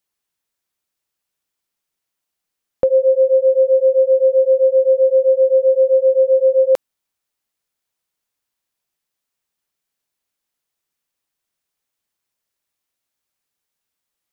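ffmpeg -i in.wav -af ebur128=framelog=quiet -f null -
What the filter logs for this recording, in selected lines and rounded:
Integrated loudness:
  I:         -14.1 LUFS
  Threshold: -24.1 LUFS
Loudness range:
  LRA:         9.1 LU
  Threshold: -36.0 LUFS
  LRA low:   -22.8 LUFS
  LRA high:  -13.7 LUFS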